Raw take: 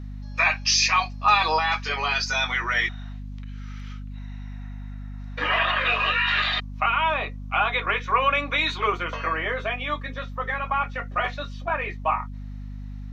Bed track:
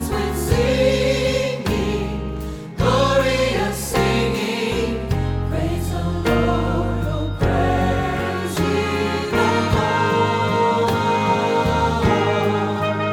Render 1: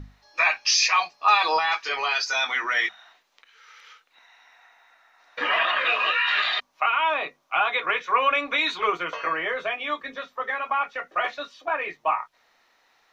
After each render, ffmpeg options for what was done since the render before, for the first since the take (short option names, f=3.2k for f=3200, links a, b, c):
-af "bandreject=f=50:t=h:w=6,bandreject=f=100:t=h:w=6,bandreject=f=150:t=h:w=6,bandreject=f=200:t=h:w=6,bandreject=f=250:t=h:w=6"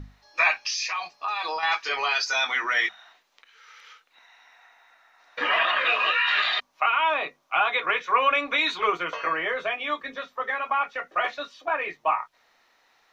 -filter_complex "[0:a]asettb=1/sr,asplit=3[a][b][c];[a]atrim=end=0.654[d];[b]atrim=start=0.65:end=1.63,asetpts=PTS-STARTPTS,afade=t=in:d=0.004:c=qsin,afade=t=out:st=0.976:d=0.004:c=qsin,acompressor=threshold=-26dB:ratio=5:attack=3.2:release=140:knee=1:detection=peak[e];[c]atrim=start=1.626[f];[d][e]acrossfade=d=0.004:c1=hsin:c2=qsin[g];[g][f]acrossfade=d=0.004:c1=qsin:c2=hsin"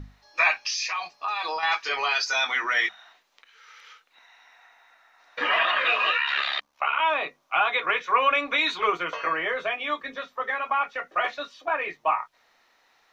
-filter_complex "[0:a]asettb=1/sr,asplit=3[a][b][c];[a]atrim=end=6.174[d];[b]atrim=start=6.17:end=7,asetpts=PTS-STARTPTS,afade=t=in:d=0.004:c=qsin,afade=t=out:st=0.826:d=0.004:c=qsin,aeval=exprs='val(0)*sin(2*PI*35*n/s)':c=same[e];[c]atrim=start=6.996[f];[d][e]acrossfade=d=0.004:c1=hsin:c2=qsin[g];[g][f]acrossfade=d=0.004:c1=qsin:c2=hsin"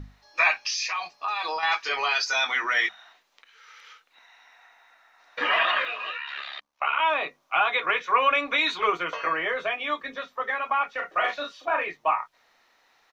-filter_complex "[0:a]asplit=3[a][b][c];[a]afade=t=out:st=10.97:d=0.02[d];[b]asplit=2[e][f];[f]adelay=38,volume=-4.5dB[g];[e][g]amix=inputs=2:normalize=0,afade=t=in:st=10.97:d=0.02,afade=t=out:st=11.83:d=0.02[h];[c]afade=t=in:st=11.83:d=0.02[i];[d][h][i]amix=inputs=3:normalize=0,asplit=3[j][k][l];[j]atrim=end=5.85,asetpts=PTS-STARTPTS,afade=t=out:st=5.72:d=0.13:c=log:silence=0.316228[m];[k]atrim=start=5.85:end=6.81,asetpts=PTS-STARTPTS,volume=-10dB[n];[l]atrim=start=6.81,asetpts=PTS-STARTPTS,afade=t=in:d=0.13:c=log:silence=0.316228[o];[m][n][o]concat=n=3:v=0:a=1"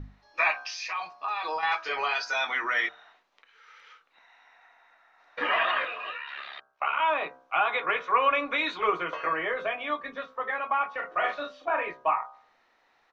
-af "lowpass=f=1.8k:p=1,bandreject=f=65.17:t=h:w=4,bandreject=f=130.34:t=h:w=4,bandreject=f=195.51:t=h:w=4,bandreject=f=260.68:t=h:w=4,bandreject=f=325.85:t=h:w=4,bandreject=f=391.02:t=h:w=4,bandreject=f=456.19:t=h:w=4,bandreject=f=521.36:t=h:w=4,bandreject=f=586.53:t=h:w=4,bandreject=f=651.7:t=h:w=4,bandreject=f=716.87:t=h:w=4,bandreject=f=782.04:t=h:w=4,bandreject=f=847.21:t=h:w=4,bandreject=f=912.38:t=h:w=4,bandreject=f=977.55:t=h:w=4,bandreject=f=1.04272k:t=h:w=4,bandreject=f=1.10789k:t=h:w=4,bandreject=f=1.17306k:t=h:w=4,bandreject=f=1.23823k:t=h:w=4,bandreject=f=1.3034k:t=h:w=4,bandreject=f=1.36857k:t=h:w=4,bandreject=f=1.43374k:t=h:w=4,bandreject=f=1.49891k:t=h:w=4,bandreject=f=1.56408k:t=h:w=4,bandreject=f=1.62925k:t=h:w=4"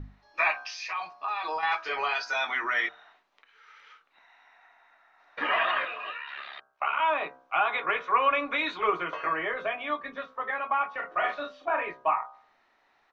-af "highshelf=f=5.2k:g=-5.5,bandreject=f=500:w=12"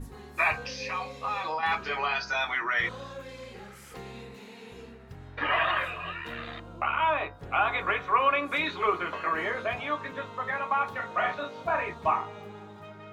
-filter_complex "[1:a]volume=-25dB[a];[0:a][a]amix=inputs=2:normalize=0"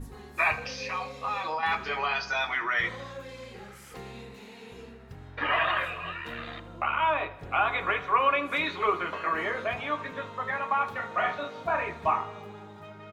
-af "aecho=1:1:78|156|234|312|390:0.126|0.0718|0.0409|0.0233|0.0133"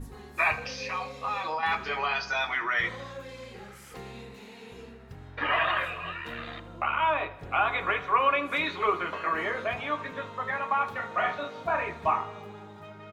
-af anull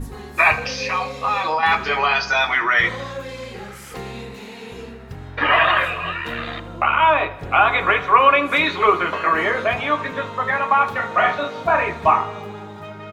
-af "volume=10.5dB,alimiter=limit=-2dB:level=0:latency=1"